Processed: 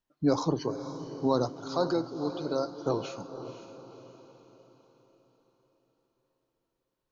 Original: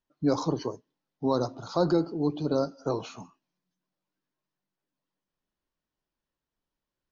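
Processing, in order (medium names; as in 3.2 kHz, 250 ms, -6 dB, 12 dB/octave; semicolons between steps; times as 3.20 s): 1.56–2.75 s: bass shelf 320 Hz -11 dB; echo that smears into a reverb 509 ms, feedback 45%, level -11 dB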